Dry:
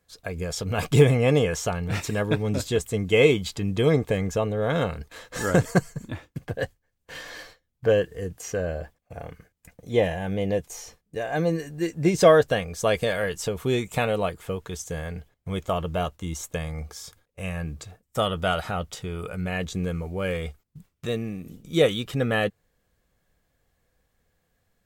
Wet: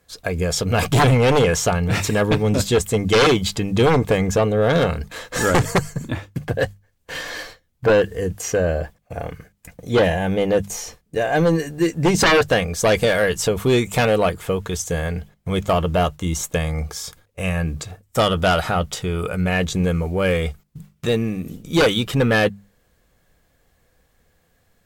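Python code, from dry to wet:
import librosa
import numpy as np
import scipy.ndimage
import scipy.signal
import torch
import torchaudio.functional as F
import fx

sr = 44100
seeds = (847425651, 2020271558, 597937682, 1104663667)

y = fx.fold_sine(x, sr, drive_db=12, ceiling_db=-4.0)
y = fx.hum_notches(y, sr, base_hz=50, count=4)
y = F.gain(torch.from_numpy(y), -6.5).numpy()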